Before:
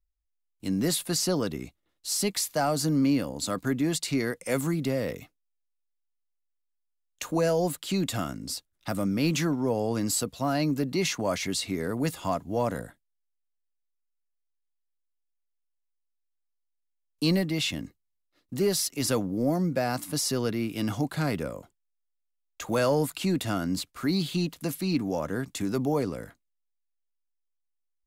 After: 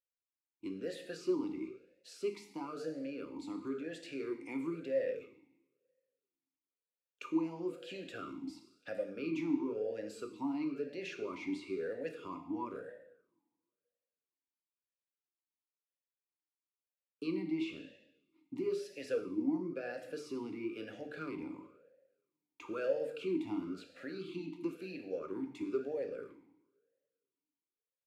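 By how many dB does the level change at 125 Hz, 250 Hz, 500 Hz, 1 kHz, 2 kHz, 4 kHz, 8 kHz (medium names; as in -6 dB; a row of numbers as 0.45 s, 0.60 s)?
-22.5 dB, -10.5 dB, -8.5 dB, -15.0 dB, -12.5 dB, -20.5 dB, -28.5 dB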